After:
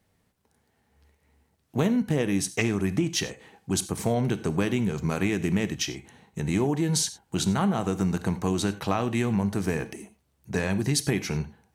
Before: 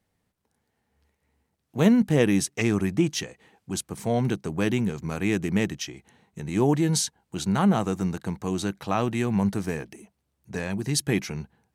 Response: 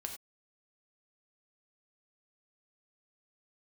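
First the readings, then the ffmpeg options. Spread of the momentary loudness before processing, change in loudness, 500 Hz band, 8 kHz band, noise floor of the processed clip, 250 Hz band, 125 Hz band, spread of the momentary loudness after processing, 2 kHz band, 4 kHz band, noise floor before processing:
13 LU, -1.5 dB, -1.5 dB, +1.0 dB, -71 dBFS, -2.0 dB, -0.5 dB, 8 LU, 0.0 dB, +1.0 dB, -77 dBFS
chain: -filter_complex "[0:a]acompressor=threshold=-26dB:ratio=10,asplit=2[a][b];[1:a]atrim=start_sample=2205[c];[b][c]afir=irnorm=-1:irlink=0,volume=-2dB[d];[a][d]amix=inputs=2:normalize=0,volume=1.5dB"

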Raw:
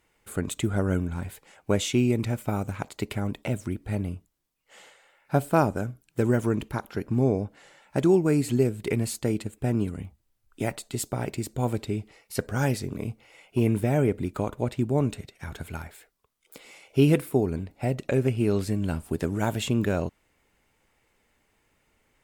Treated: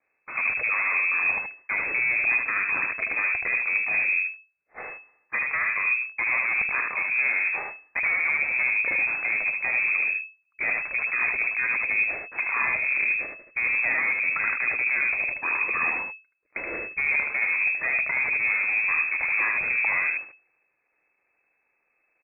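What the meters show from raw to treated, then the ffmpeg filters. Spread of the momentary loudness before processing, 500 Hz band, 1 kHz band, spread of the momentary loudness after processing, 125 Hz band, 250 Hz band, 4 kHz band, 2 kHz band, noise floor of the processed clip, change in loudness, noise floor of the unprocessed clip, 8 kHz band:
13 LU, -15.5 dB, +0.5 dB, 8 LU, under -25 dB, -23.5 dB, under -35 dB, +19.5 dB, -73 dBFS, +4.0 dB, -70 dBFS, under -40 dB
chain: -filter_complex "[0:a]aeval=exprs='if(lt(val(0),0),0.251*val(0),val(0))':c=same,agate=range=-28dB:threshold=-51dB:ratio=16:detection=peak,acrossover=split=82|1500[a][b][c];[a]acompressor=threshold=-46dB:ratio=4[d];[b]acompressor=threshold=-27dB:ratio=4[e];[c]acompressor=threshold=-43dB:ratio=4[f];[d][e][f]amix=inputs=3:normalize=0,apsyclip=33dB,areverse,acompressor=threshold=-16dB:ratio=6,areverse,asoftclip=type=tanh:threshold=-12.5dB,asplit=2[g][h];[h]aecho=0:1:76:0.631[i];[g][i]amix=inputs=2:normalize=0,lowpass=f=2.2k:t=q:w=0.5098,lowpass=f=2.2k:t=q:w=0.6013,lowpass=f=2.2k:t=q:w=0.9,lowpass=f=2.2k:t=q:w=2.563,afreqshift=-2600,volume=-7dB"

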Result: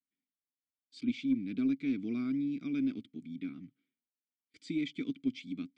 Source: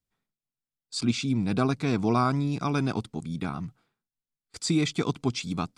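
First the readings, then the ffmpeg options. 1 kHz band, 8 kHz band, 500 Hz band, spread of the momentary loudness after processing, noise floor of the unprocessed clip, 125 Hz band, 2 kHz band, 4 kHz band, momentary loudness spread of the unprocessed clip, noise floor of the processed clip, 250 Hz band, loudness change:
under -30 dB, under -25 dB, -16.5 dB, 10 LU, under -85 dBFS, -20.0 dB, -11.5 dB, -15.0 dB, 10 LU, under -85 dBFS, -4.5 dB, -7.5 dB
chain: -filter_complex "[0:a]asplit=3[a][b][c];[a]bandpass=f=270:t=q:w=8,volume=0dB[d];[b]bandpass=f=2.29k:t=q:w=8,volume=-6dB[e];[c]bandpass=f=3.01k:t=q:w=8,volume=-9dB[f];[d][e][f]amix=inputs=3:normalize=0,aeval=exprs='0.0944*(cos(1*acos(clip(val(0)/0.0944,-1,1)))-cos(1*PI/2))+0.0015*(cos(4*acos(clip(val(0)/0.0944,-1,1)))-cos(4*PI/2))+0.000596*(cos(6*acos(clip(val(0)/0.0944,-1,1)))-cos(6*PI/2))':c=same"

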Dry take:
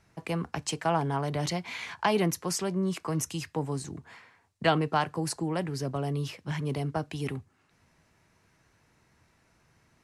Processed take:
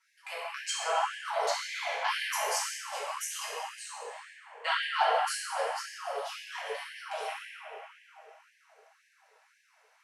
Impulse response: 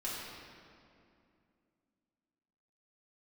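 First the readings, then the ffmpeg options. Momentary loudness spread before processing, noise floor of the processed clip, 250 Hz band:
8 LU, -68 dBFS, under -40 dB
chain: -filter_complex "[0:a]lowshelf=f=370:g=-4,flanger=delay=17.5:depth=3.1:speed=2.7[a];[1:a]atrim=start_sample=2205,asetrate=26019,aresample=44100[b];[a][b]afir=irnorm=-1:irlink=0,afftfilt=real='re*gte(b*sr/1024,420*pow(1600/420,0.5+0.5*sin(2*PI*1.9*pts/sr)))':imag='im*gte(b*sr/1024,420*pow(1600/420,0.5+0.5*sin(2*PI*1.9*pts/sr)))':win_size=1024:overlap=0.75"

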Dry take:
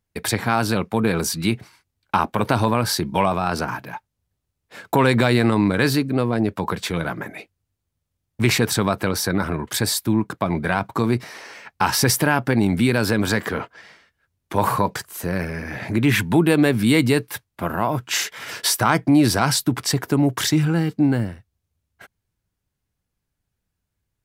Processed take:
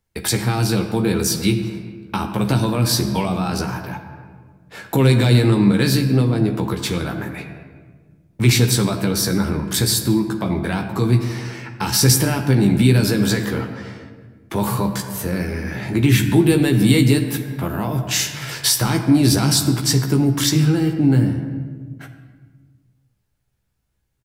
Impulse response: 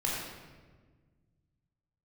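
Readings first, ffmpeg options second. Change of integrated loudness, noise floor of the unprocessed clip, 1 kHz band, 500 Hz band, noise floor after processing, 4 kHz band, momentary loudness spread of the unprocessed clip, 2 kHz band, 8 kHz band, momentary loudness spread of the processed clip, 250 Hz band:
+2.5 dB, -79 dBFS, -5.0 dB, 0.0 dB, -68 dBFS, +3.5 dB, 11 LU, -2.5 dB, +4.5 dB, 13 LU, +2.5 dB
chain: -filter_complex "[0:a]asplit=2[a][b];[1:a]atrim=start_sample=2205[c];[b][c]afir=irnorm=-1:irlink=0,volume=-11.5dB[d];[a][d]amix=inputs=2:normalize=0,acrossover=split=380|3000[e][f][g];[f]acompressor=threshold=-37dB:ratio=2[h];[e][h][g]amix=inputs=3:normalize=0,asplit=2[i][j];[j]adelay=15,volume=-5.5dB[k];[i][k]amix=inputs=2:normalize=0,volume=1dB"

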